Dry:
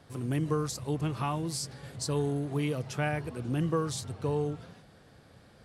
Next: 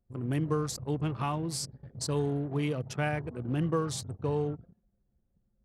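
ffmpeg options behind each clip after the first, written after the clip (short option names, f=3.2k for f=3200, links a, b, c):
-af "anlmdn=0.398"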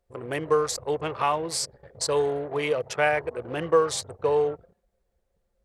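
-af "equalizer=f=125:t=o:w=1:g=-9,equalizer=f=250:t=o:w=1:g=-10,equalizer=f=500:t=o:w=1:g=12,equalizer=f=1k:t=o:w=1:g=5,equalizer=f=2k:t=o:w=1:g=8,equalizer=f=4k:t=o:w=1:g=4,equalizer=f=8k:t=o:w=1:g=5,volume=1.5dB"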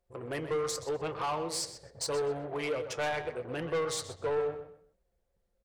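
-filter_complex "[0:a]flanger=delay=5.5:depth=3.5:regen=-67:speed=0.8:shape=sinusoidal,asoftclip=type=tanh:threshold=-27dB,asplit=2[a][b];[b]adelay=126,lowpass=f=5k:p=1,volume=-10dB,asplit=2[c][d];[d]adelay=126,lowpass=f=5k:p=1,volume=0.27,asplit=2[e][f];[f]adelay=126,lowpass=f=5k:p=1,volume=0.27[g];[c][e][g]amix=inputs=3:normalize=0[h];[a][h]amix=inputs=2:normalize=0"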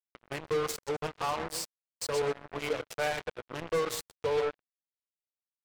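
-af "acrusher=bits=4:mix=0:aa=0.5"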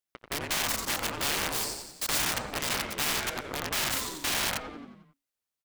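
-filter_complex "[0:a]asplit=8[a][b][c][d][e][f][g][h];[b]adelay=89,afreqshift=-40,volume=-5.5dB[i];[c]adelay=178,afreqshift=-80,volume=-10.9dB[j];[d]adelay=267,afreqshift=-120,volume=-16.2dB[k];[e]adelay=356,afreqshift=-160,volume=-21.6dB[l];[f]adelay=445,afreqshift=-200,volume=-26.9dB[m];[g]adelay=534,afreqshift=-240,volume=-32.3dB[n];[h]adelay=623,afreqshift=-280,volume=-37.6dB[o];[a][i][j][k][l][m][n][o]amix=inputs=8:normalize=0,aeval=exprs='(mod(22.4*val(0)+1,2)-1)/22.4':c=same,afftfilt=real='re*lt(hypot(re,im),0.0562)':imag='im*lt(hypot(re,im),0.0562)':win_size=1024:overlap=0.75,volume=5.5dB"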